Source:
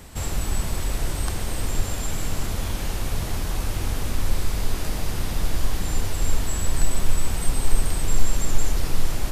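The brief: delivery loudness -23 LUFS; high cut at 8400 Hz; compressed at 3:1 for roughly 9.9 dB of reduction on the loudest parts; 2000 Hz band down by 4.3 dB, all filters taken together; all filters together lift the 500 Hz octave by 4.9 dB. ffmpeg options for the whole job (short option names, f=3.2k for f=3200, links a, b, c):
-af "lowpass=8.4k,equalizer=f=500:t=o:g=6.5,equalizer=f=2k:t=o:g=-6,acompressor=threshold=-20dB:ratio=3,volume=8.5dB"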